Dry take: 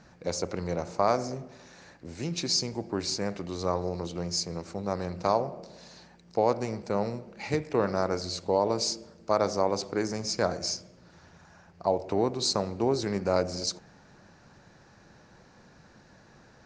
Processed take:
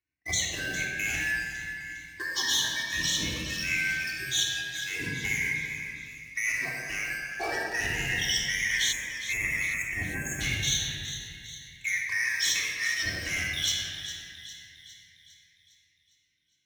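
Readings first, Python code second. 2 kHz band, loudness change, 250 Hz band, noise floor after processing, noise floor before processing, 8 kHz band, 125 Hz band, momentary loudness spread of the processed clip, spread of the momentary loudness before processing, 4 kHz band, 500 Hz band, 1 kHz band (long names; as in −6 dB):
+17.0 dB, +1.0 dB, −10.0 dB, −69 dBFS, −57 dBFS, +6.0 dB, −3.5 dB, 12 LU, 10 LU, +5.5 dB, −17.5 dB, −12.5 dB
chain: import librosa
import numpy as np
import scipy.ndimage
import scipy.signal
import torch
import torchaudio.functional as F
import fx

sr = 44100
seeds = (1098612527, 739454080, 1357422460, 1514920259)

p1 = fx.band_shuffle(x, sr, order='2143')
p2 = fx.noise_reduce_blind(p1, sr, reduce_db=28)
p3 = fx.leveller(p2, sr, passes=3)
p4 = fx.over_compress(p3, sr, threshold_db=-26.0, ratio=-1.0)
p5 = p3 + (p4 * librosa.db_to_amplitude(2.5))
p6 = fx.room_shoebox(p5, sr, seeds[0], volume_m3=2800.0, walls='mixed', distance_m=3.4)
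p7 = fx.spec_erase(p6, sr, start_s=8.92, length_s=1.49, low_hz=2700.0, high_hz=6400.0)
p8 = scipy.signal.sosfilt(scipy.signal.butter(2, 54.0, 'highpass', fs=sr, output='sos'), p7)
p9 = fx.low_shelf(p8, sr, hz=130.0, db=8.0)
p10 = fx.comb_fb(p9, sr, f0_hz=310.0, decay_s=0.33, harmonics='odd', damping=0.0, mix_pct=60)
p11 = p10 + fx.echo_split(p10, sr, split_hz=2400.0, low_ms=205, high_ms=406, feedback_pct=52, wet_db=-11.5, dry=0)
p12 = fx.dynamic_eq(p11, sr, hz=1500.0, q=1.3, threshold_db=-29.0, ratio=4.0, max_db=-6)
p13 = fx.notch_cascade(p12, sr, direction='rising', hz=0.31)
y = p13 * librosa.db_to_amplitude(-4.5)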